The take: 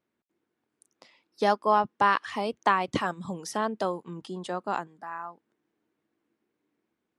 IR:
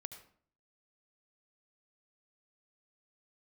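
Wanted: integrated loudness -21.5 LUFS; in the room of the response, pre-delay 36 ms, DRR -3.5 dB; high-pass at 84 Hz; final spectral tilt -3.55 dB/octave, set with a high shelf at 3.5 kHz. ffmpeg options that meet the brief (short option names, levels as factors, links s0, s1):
-filter_complex "[0:a]highpass=84,highshelf=f=3500:g=-8,asplit=2[s0][s1];[1:a]atrim=start_sample=2205,adelay=36[s2];[s1][s2]afir=irnorm=-1:irlink=0,volume=2.37[s3];[s0][s3]amix=inputs=2:normalize=0,volume=1.26"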